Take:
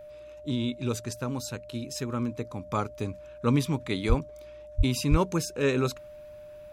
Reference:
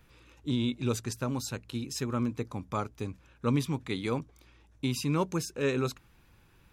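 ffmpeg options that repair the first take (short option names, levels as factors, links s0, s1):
-filter_complex "[0:a]bandreject=f=600:w=30,asplit=3[s0][s1][s2];[s0]afade=t=out:st=4.08:d=0.02[s3];[s1]highpass=f=140:w=0.5412,highpass=f=140:w=1.3066,afade=t=in:st=4.08:d=0.02,afade=t=out:st=4.2:d=0.02[s4];[s2]afade=t=in:st=4.2:d=0.02[s5];[s3][s4][s5]amix=inputs=3:normalize=0,asplit=3[s6][s7][s8];[s6]afade=t=out:st=4.77:d=0.02[s9];[s7]highpass=f=140:w=0.5412,highpass=f=140:w=1.3066,afade=t=in:st=4.77:d=0.02,afade=t=out:st=4.89:d=0.02[s10];[s8]afade=t=in:st=4.89:d=0.02[s11];[s9][s10][s11]amix=inputs=3:normalize=0,asplit=3[s12][s13][s14];[s12]afade=t=out:st=5.1:d=0.02[s15];[s13]highpass=f=140:w=0.5412,highpass=f=140:w=1.3066,afade=t=in:st=5.1:d=0.02,afade=t=out:st=5.22:d=0.02[s16];[s14]afade=t=in:st=5.22:d=0.02[s17];[s15][s16][s17]amix=inputs=3:normalize=0,asetnsamples=n=441:p=0,asendcmd='2.66 volume volume -3.5dB',volume=1"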